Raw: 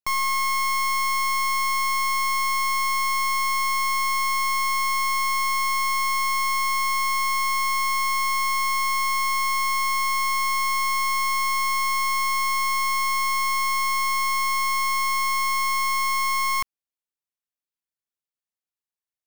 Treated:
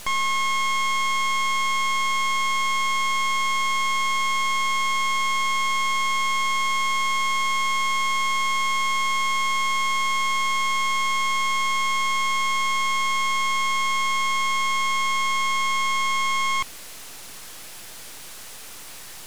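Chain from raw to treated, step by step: delta modulation 64 kbps, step -36 dBFS; half-wave rectifier; gain +7.5 dB

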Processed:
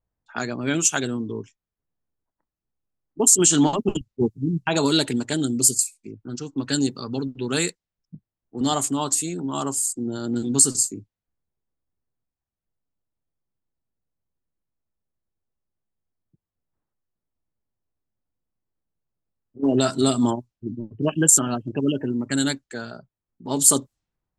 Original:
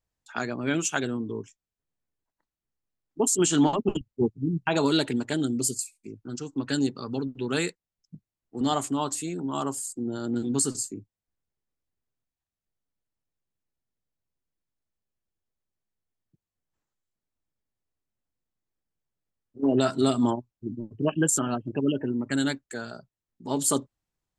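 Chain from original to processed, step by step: tone controls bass +2 dB, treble +9 dB; low-pass opened by the level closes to 1300 Hz, open at -22.5 dBFS; gain +2 dB

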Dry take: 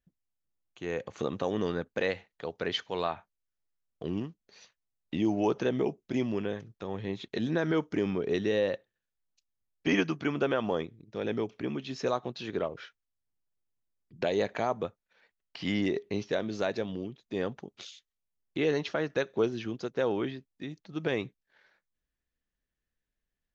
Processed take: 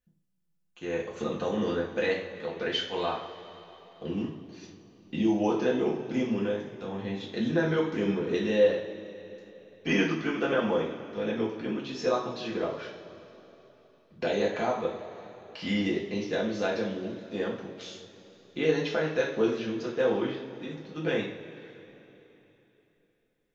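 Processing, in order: two-slope reverb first 0.43 s, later 3.5 s, from -18 dB, DRR -4.5 dB; gain -3.5 dB

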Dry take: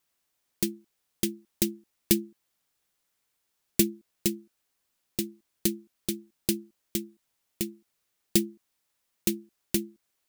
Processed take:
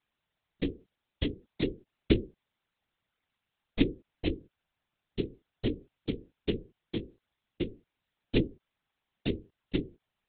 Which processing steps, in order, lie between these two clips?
monotone LPC vocoder at 8 kHz 170 Hz; whisperiser

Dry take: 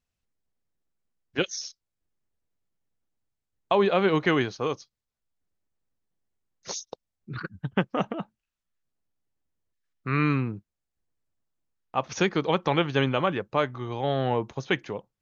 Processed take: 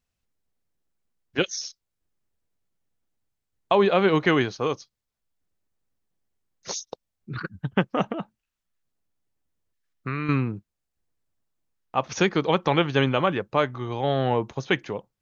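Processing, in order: 8.15–10.29 compressor 12:1, threshold -28 dBFS, peak gain reduction 9.5 dB; gain +2.5 dB

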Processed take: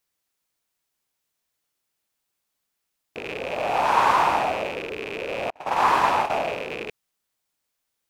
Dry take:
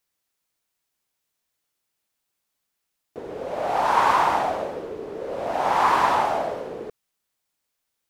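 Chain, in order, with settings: rattling part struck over -44 dBFS, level -21 dBFS; 5.5–6.3 gate -20 dBFS, range -42 dB

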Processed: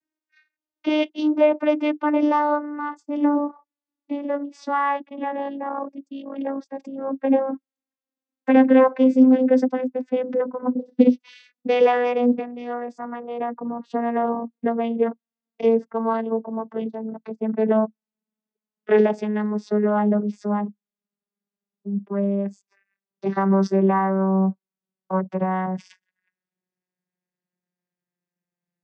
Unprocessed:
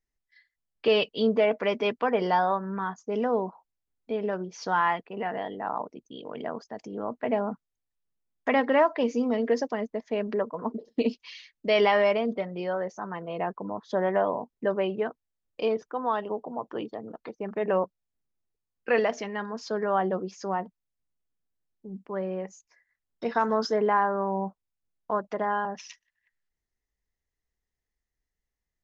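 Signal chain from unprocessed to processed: vocoder on a gliding note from D#4, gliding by -10 st; gain +7.5 dB

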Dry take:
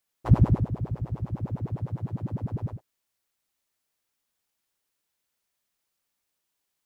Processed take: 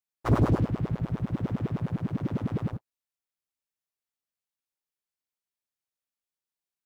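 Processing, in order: sample leveller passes 3; formant shift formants +4 st; gain -8 dB

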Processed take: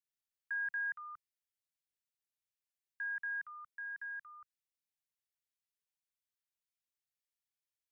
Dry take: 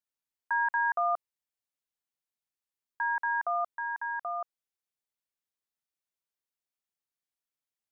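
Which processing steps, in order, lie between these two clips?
inverse Chebyshev band-stop 350–760 Hz, stop band 60 dB; gain -4 dB

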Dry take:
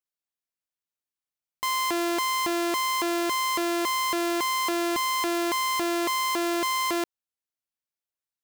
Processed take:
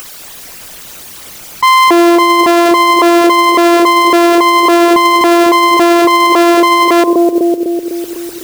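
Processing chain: formant sharpening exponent 2; upward compressor, threshold -31 dBFS; analogue delay 0.25 s, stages 1024, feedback 63%, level -3 dB; modulation noise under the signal 25 dB; maximiser +28.5 dB; gain -1 dB

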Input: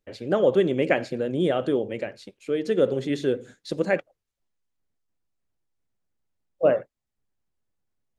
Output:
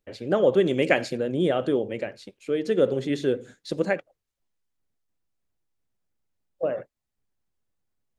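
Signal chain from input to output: 0.66–1.17 high shelf 3000 Hz +9.5 dB; 3.92–6.78 compressor 6:1, threshold -23 dBFS, peak gain reduction 9 dB

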